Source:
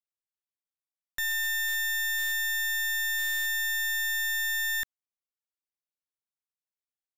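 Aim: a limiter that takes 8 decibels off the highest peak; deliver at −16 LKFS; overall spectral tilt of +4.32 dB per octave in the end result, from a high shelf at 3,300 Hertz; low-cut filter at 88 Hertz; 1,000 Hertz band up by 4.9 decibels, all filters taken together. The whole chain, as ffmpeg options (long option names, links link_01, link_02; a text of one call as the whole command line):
ffmpeg -i in.wav -af "highpass=88,equalizer=frequency=1000:width_type=o:gain=5,highshelf=frequency=3300:gain=5.5,volume=16dB,alimiter=limit=-13dB:level=0:latency=1" out.wav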